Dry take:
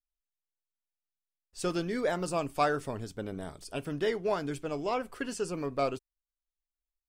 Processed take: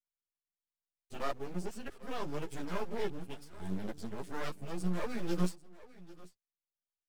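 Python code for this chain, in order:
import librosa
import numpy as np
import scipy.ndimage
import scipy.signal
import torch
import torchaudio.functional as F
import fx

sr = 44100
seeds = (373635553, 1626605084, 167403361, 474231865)

p1 = np.flip(x).copy()
p2 = scipy.signal.sosfilt(scipy.signal.butter(4, 43.0, 'highpass', fs=sr, output='sos'), p1)
p3 = fx.peak_eq(p2, sr, hz=180.0, db=12.5, octaves=0.29)
p4 = fx.notch(p3, sr, hz=830.0, q=12.0)
p5 = fx.quant_companded(p4, sr, bits=4)
p6 = p4 + (p5 * librosa.db_to_amplitude(-8.0))
p7 = fx.rotary(p6, sr, hz=0.7)
p8 = np.maximum(p7, 0.0)
p9 = p8 + fx.echo_single(p8, sr, ms=794, db=-19.0, dry=0)
p10 = fx.ensemble(p9, sr)
y = p10 * librosa.db_to_amplitude(-1.5)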